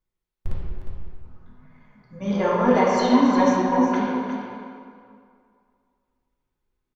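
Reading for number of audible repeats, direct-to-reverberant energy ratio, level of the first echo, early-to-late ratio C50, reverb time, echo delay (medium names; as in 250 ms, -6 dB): 1, -7.0 dB, -8.0 dB, -3.0 dB, 2.2 s, 358 ms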